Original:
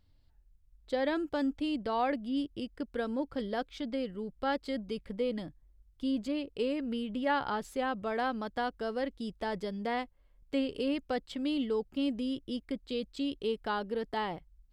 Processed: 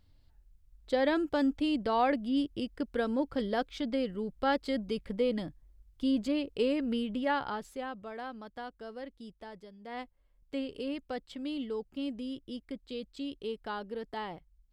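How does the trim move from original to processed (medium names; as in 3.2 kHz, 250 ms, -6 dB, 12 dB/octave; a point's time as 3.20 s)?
6.98 s +3 dB
8.12 s -9 dB
9.26 s -9 dB
9.79 s -16 dB
10.01 s -4.5 dB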